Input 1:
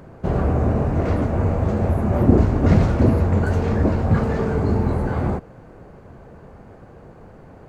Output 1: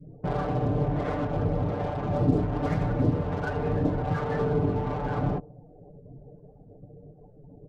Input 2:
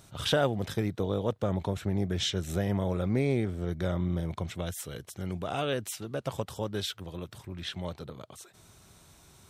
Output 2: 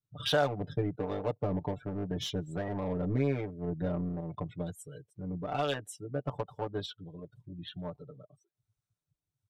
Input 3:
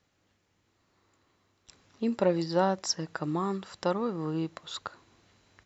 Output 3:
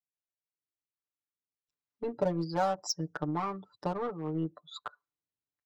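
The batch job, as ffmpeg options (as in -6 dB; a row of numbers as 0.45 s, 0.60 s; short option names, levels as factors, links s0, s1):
-filter_complex "[0:a]adynamicequalizer=threshold=0.0126:dfrequency=740:dqfactor=2.3:tfrequency=740:tqfactor=2.3:attack=5:release=100:ratio=0.375:range=1.5:mode=boostabove:tftype=bell,afftdn=nr=35:nf=-38,asplit=2[s0][s1];[s1]acrusher=bits=3:mix=0:aa=0.5,volume=0.376[s2];[s0][s2]amix=inputs=2:normalize=0,acompressor=threshold=0.0708:ratio=2,acrossover=split=570[s3][s4];[s3]aeval=exprs='val(0)*(1-0.5/2+0.5/2*cos(2*PI*1.3*n/s))':c=same[s5];[s4]aeval=exprs='val(0)*(1-0.5/2-0.5/2*cos(2*PI*1.3*n/s))':c=same[s6];[s5][s6]amix=inputs=2:normalize=0,aecho=1:1:6.8:0.97,volume=0.631"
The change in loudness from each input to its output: -8.0 LU, -3.0 LU, -3.0 LU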